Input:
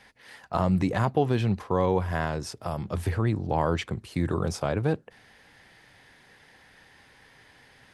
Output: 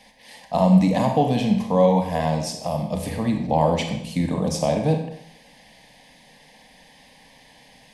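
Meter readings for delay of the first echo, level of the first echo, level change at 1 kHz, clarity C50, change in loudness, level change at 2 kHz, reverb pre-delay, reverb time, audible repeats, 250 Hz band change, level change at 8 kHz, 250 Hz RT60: no echo audible, no echo audible, +6.0 dB, 6.0 dB, +6.0 dB, 0.0 dB, 30 ms, 0.75 s, no echo audible, +8.0 dB, +8.5 dB, 0.70 s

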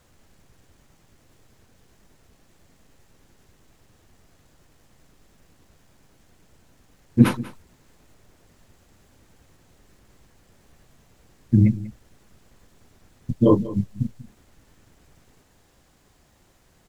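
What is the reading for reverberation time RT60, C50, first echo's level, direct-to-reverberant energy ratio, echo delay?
no reverb audible, no reverb audible, −17.5 dB, no reverb audible, 191 ms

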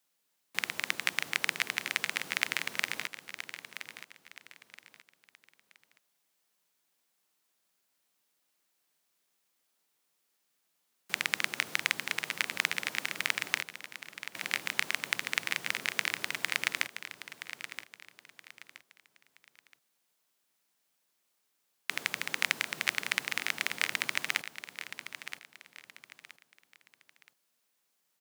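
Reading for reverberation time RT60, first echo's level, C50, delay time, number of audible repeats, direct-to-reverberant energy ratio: no reverb audible, −11.0 dB, no reverb audible, 973 ms, 3, no reverb audible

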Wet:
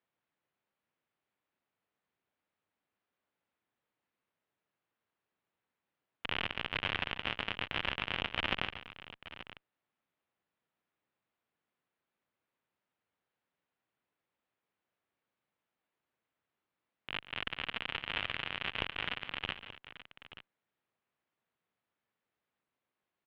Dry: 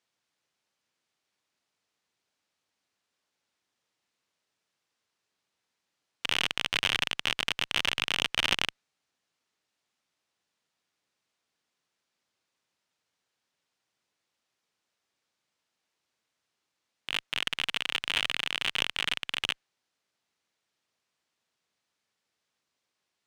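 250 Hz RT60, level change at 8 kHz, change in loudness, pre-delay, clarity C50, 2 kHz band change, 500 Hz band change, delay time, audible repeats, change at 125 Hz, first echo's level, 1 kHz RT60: no reverb audible, below −25 dB, −8.0 dB, no reverb audible, no reverb audible, −6.0 dB, −2.0 dB, 140 ms, 3, −1.0 dB, −15.0 dB, no reverb audible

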